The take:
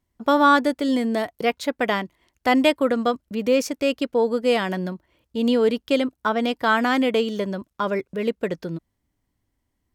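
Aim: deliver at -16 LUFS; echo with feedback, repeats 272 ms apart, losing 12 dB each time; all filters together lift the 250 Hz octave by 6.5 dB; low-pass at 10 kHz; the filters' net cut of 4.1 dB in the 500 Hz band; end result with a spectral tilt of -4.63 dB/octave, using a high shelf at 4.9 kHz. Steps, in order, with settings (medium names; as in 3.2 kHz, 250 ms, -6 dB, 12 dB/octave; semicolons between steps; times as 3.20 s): low-pass 10 kHz; peaking EQ 250 Hz +8.5 dB; peaking EQ 500 Hz -6.5 dB; treble shelf 4.9 kHz -8.5 dB; feedback delay 272 ms, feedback 25%, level -12 dB; trim +3.5 dB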